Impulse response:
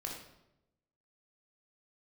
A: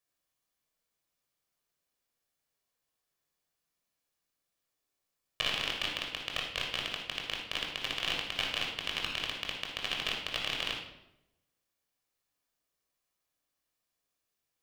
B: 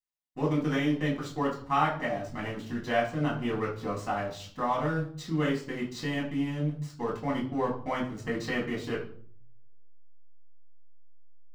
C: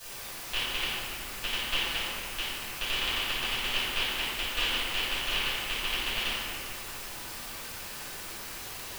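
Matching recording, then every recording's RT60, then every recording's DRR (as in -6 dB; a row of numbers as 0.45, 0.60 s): A; 0.90, 0.50, 2.4 s; -1.0, -4.0, -16.0 dB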